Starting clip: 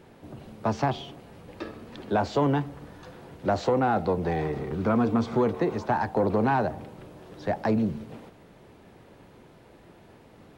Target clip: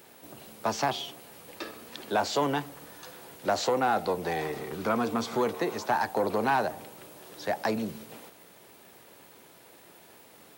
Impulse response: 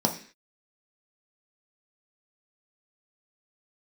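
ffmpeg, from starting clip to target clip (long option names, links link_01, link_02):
-af "aemphasis=mode=production:type=riaa"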